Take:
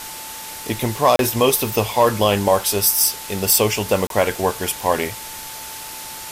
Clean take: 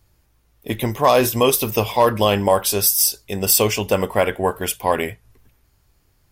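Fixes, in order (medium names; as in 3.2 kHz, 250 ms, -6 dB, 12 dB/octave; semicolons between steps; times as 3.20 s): band-stop 880 Hz, Q 30; interpolate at 1.16/4.07 s, 32 ms; noise reduction 27 dB, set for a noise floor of -33 dBFS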